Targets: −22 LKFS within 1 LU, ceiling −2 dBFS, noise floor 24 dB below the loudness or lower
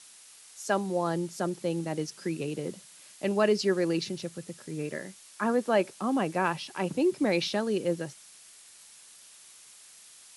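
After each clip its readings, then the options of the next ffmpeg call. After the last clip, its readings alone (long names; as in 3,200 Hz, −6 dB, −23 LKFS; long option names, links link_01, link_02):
background noise floor −53 dBFS; target noise floor −54 dBFS; integrated loudness −30.0 LKFS; sample peak −12.5 dBFS; target loudness −22.0 LKFS
→ -af "afftdn=noise_reduction=6:noise_floor=-53"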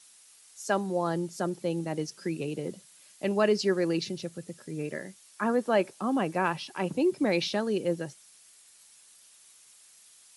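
background noise floor −57 dBFS; integrated loudness −30.0 LKFS; sample peak −12.5 dBFS; target loudness −22.0 LKFS
→ -af "volume=8dB"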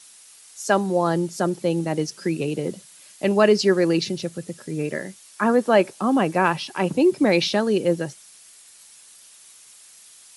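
integrated loudness −22.0 LKFS; sample peak −4.5 dBFS; background noise floor −49 dBFS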